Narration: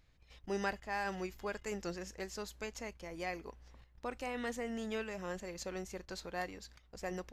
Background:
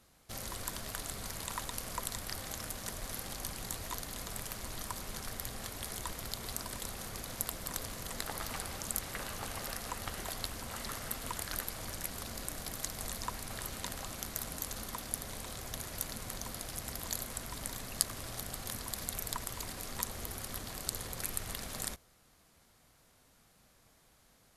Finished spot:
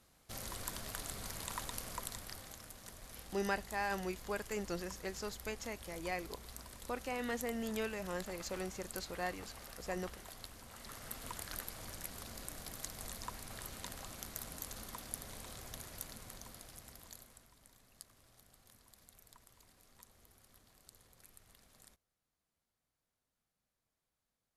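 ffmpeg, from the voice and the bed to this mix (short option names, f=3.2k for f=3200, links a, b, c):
-filter_complex "[0:a]adelay=2850,volume=0.5dB[a];[1:a]volume=2.5dB,afade=t=out:st=1.74:d=0.88:silence=0.375837,afade=t=in:st=10.76:d=0.46:silence=0.530884,afade=t=out:st=15.58:d=1.96:silence=0.133352[b];[a][b]amix=inputs=2:normalize=0"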